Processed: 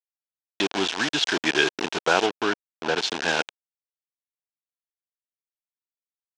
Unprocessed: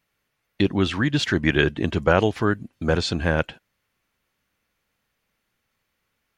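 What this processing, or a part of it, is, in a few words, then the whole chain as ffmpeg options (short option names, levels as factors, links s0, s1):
hand-held game console: -filter_complex "[0:a]acrusher=bits=3:mix=0:aa=0.000001,highpass=500,equalizer=f=560:t=q:w=4:g=-10,equalizer=f=1200:t=q:w=4:g=-8,equalizer=f=2000:t=q:w=4:g=-8,equalizer=f=4500:t=q:w=4:g=-4,lowpass=f=5800:w=0.5412,lowpass=f=5800:w=1.3066,asettb=1/sr,asplit=3[s0][s1][s2];[s0]atrim=end=2.264[s3];[s1]atrim=start=2.26:end=2.98,asetpts=PTS-STARTPTS,afade=t=in:d=0.004:c=qsin,afade=t=out:st=0.716:d=0.004:c=qsin,aemphasis=mode=reproduction:type=50fm[s4];[s2]atrim=start=2.976[s5];[s3][s4]acrossfade=d=0.004:c1=hsin:c2=qsin[s6];[s6][s5]acrossfade=d=0.004:c1=qsin:c2=hsin,volume=1.58"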